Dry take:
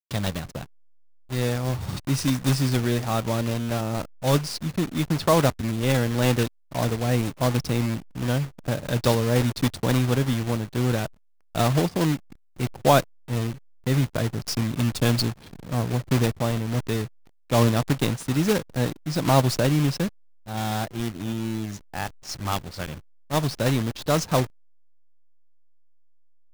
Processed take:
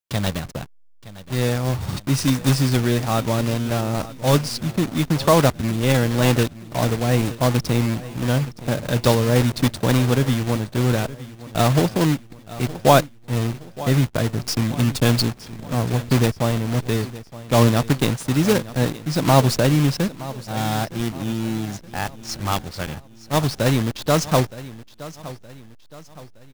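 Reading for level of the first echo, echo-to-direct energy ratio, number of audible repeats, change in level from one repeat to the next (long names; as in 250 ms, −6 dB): −17.0 dB, −16.0 dB, 3, −7.0 dB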